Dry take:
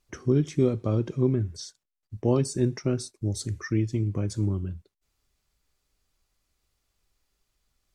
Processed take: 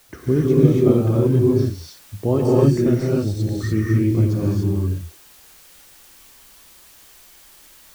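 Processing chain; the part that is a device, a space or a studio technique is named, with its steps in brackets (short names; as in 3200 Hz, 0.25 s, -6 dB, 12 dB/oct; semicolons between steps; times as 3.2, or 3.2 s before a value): cassette deck with a dirty head (tape spacing loss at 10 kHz 21 dB; wow and flutter; white noise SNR 29 dB); non-linear reverb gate 0.32 s rising, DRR -5 dB; gain +4 dB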